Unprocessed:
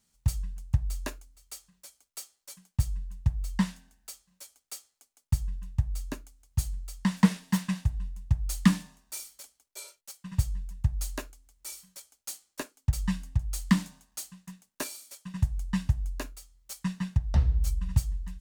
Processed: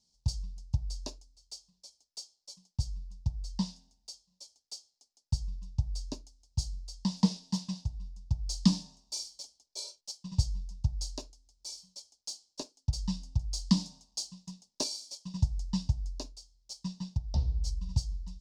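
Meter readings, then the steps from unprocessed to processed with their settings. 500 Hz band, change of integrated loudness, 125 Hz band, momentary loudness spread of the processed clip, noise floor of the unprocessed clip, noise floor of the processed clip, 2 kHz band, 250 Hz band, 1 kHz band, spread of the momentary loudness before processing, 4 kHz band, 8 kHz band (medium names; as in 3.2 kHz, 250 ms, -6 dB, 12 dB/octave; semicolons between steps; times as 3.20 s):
-3.5 dB, -4.0 dB, -4.0 dB, 18 LU, -80 dBFS, -82 dBFS, under -15 dB, -4.0 dB, -7.5 dB, 19 LU, +4.5 dB, -1.5 dB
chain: dynamic bell 1.6 kHz, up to +5 dB, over -60 dBFS, Q 6.3; gain riding 2 s; FFT filter 910 Hz 0 dB, 1.6 kHz -25 dB, 5 kHz +13 dB, 14 kHz -22 dB; trim -5.5 dB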